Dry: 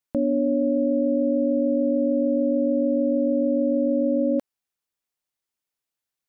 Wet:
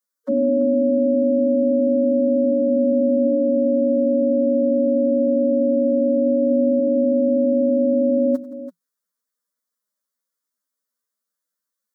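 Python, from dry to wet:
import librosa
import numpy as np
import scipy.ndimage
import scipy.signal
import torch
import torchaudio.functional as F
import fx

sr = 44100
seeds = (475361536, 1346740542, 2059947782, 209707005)

p1 = scipy.signal.sosfilt(scipy.signal.butter(16, 170.0, 'highpass', fs=sr, output='sos'), x)
p2 = fx.stretch_vocoder(p1, sr, factor=1.9)
p3 = fx.fixed_phaser(p2, sr, hz=520.0, stages=8)
p4 = p3 + fx.echo_multitap(p3, sr, ms=(92, 170, 335), db=(-17.5, -19.0, -13.5), dry=0)
y = F.gain(torch.from_numpy(p4), 5.0).numpy()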